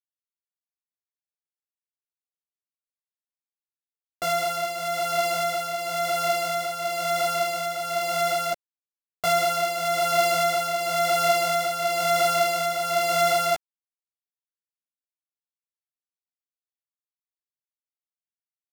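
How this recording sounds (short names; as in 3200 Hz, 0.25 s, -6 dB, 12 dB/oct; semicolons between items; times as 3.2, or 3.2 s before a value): a buzz of ramps at a fixed pitch in blocks of 64 samples; tremolo triangle 1 Hz, depth 55%; a quantiser's noise floor 12-bit, dither none; a shimmering, thickened sound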